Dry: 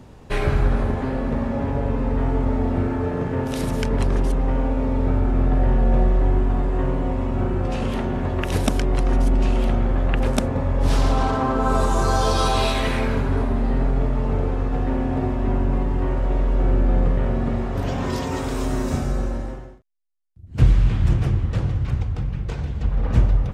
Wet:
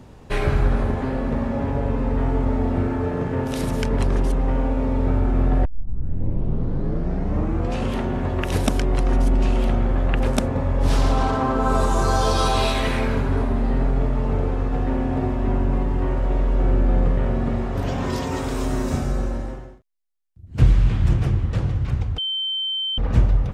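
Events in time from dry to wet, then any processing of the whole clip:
5.65 s: tape start 2.13 s
22.18–22.98 s: bleep 3.1 kHz -22 dBFS

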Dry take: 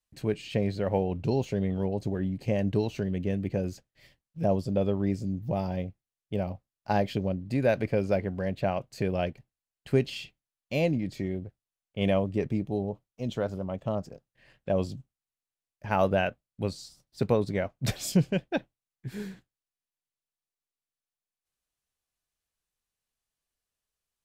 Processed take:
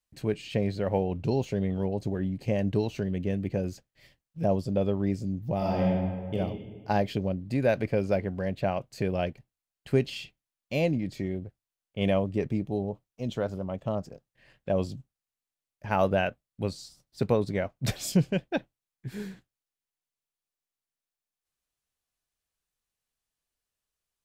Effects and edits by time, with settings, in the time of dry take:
5.57–6.34 s: reverb throw, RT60 1.7 s, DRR -6 dB

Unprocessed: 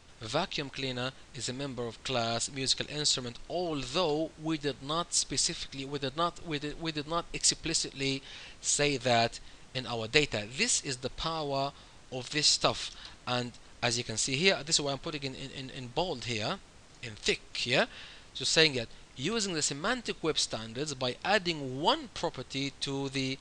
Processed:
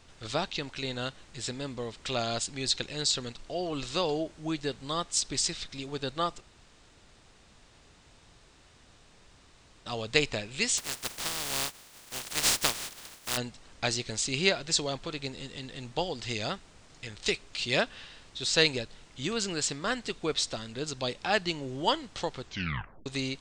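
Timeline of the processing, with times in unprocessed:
6.41–9.86 s: room tone
10.77–13.36 s: spectral contrast reduction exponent 0.16
22.41 s: tape stop 0.65 s

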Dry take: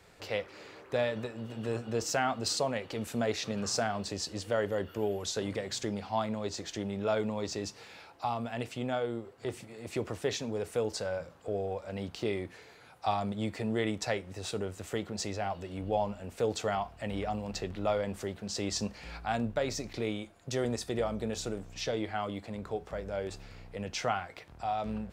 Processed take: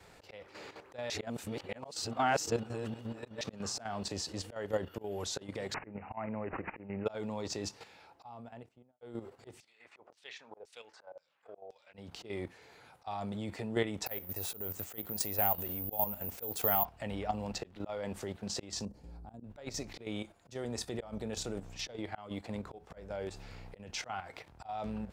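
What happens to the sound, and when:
1.10–3.41 s: reverse
5.74–7.06 s: careless resampling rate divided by 8×, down none, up filtered
7.72–9.01 s: studio fade out
9.60–11.94 s: LFO band-pass saw down 1.9 Hz 540–5600 Hz
14.06–16.85 s: careless resampling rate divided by 3×, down none, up zero stuff
17.54–18.13 s: bass shelf 100 Hz -7 dB
18.85–19.44 s: FFT filter 330 Hz 0 dB, 2.3 kHz -27 dB, 10 kHz -9 dB
whole clip: peaking EQ 860 Hz +4 dB 0.33 oct; slow attack 224 ms; level held to a coarse grid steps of 10 dB; trim +2 dB

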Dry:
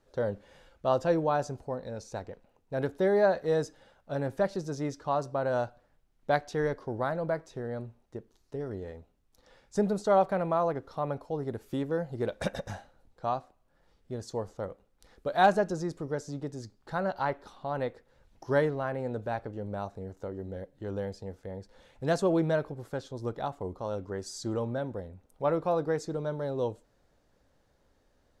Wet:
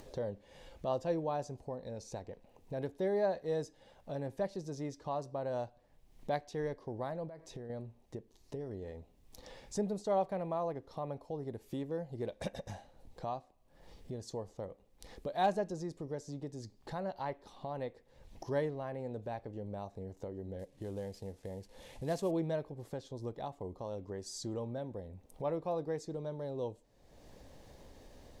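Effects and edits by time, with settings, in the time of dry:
7.28–7.70 s: compression 5:1, threshold -41 dBFS
20.59–22.31 s: CVSD coder 64 kbps
whole clip: upward compressor, threshold -29 dBFS; peaking EQ 1.4 kHz -12 dB 0.4 oct; trim -7.5 dB

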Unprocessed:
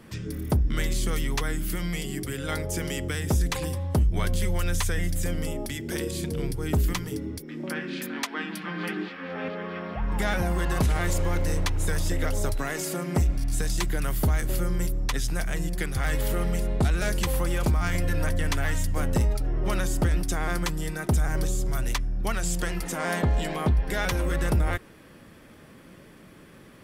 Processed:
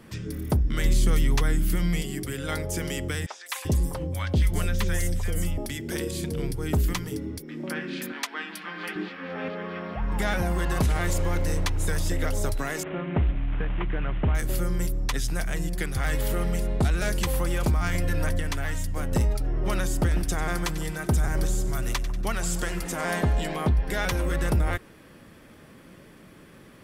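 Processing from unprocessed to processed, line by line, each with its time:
0.84–2.02 s: bass shelf 240 Hz +7 dB
3.26–5.58 s: three bands offset in time mids, highs, lows 200/390 ms, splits 760/5500 Hz
8.12–8.96 s: high-pass 620 Hz 6 dB/octave
12.83–14.35 s: CVSD coder 16 kbps
18.40–19.12 s: gain -3 dB
19.98–23.33 s: two-band feedback delay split 1.3 kHz, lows 146 ms, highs 95 ms, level -13 dB

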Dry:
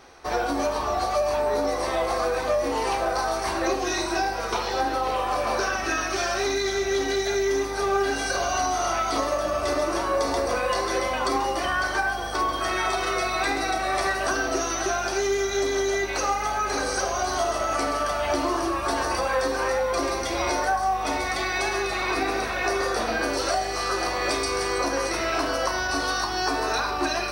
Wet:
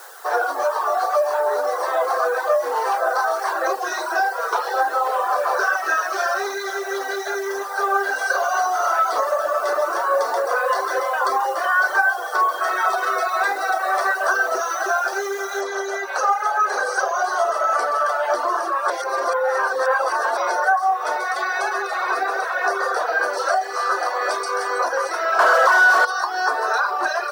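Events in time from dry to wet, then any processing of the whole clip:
15.61 s: noise floor step -42 dB -55 dB
18.90–20.37 s: reverse
25.39–26.05 s: overdrive pedal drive 33 dB, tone 2.6 kHz, clips at -13 dBFS
whole clip: reverb removal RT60 0.6 s; steep high-pass 440 Hz 36 dB/octave; resonant high shelf 1.9 kHz -6.5 dB, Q 3; trim +5 dB

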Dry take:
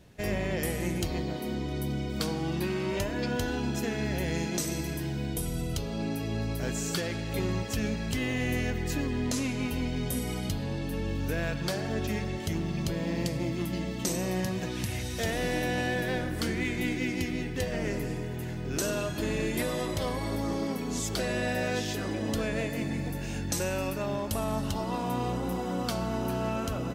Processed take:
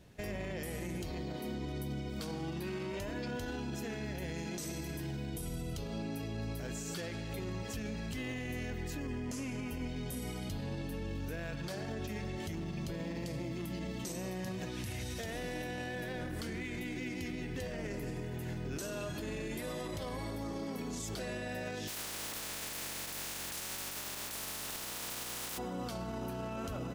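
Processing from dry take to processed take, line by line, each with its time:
8.98–9.88 s: peaking EQ 3.9 kHz -13 dB 0.25 oct
21.87–25.57 s: spectral contrast reduction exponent 0.14
whole clip: peak limiter -28.5 dBFS; trim -3 dB

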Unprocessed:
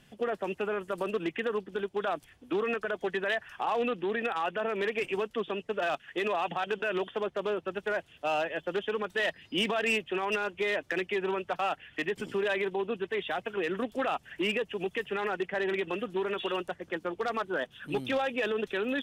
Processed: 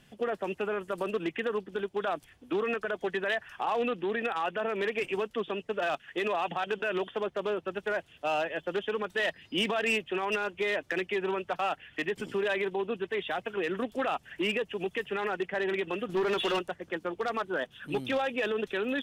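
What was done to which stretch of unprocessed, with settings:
16.09–16.59 s: waveshaping leveller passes 2

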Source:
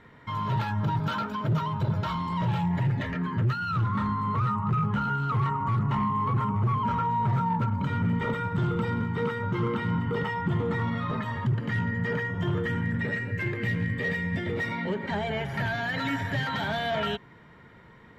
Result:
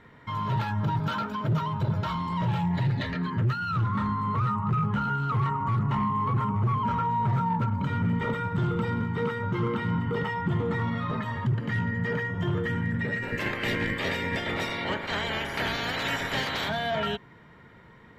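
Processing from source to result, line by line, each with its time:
2.74–3.30 s: peaking EQ 4.1 kHz +13.5 dB 0.42 oct
13.22–16.68 s: spectral peaks clipped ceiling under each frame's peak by 21 dB

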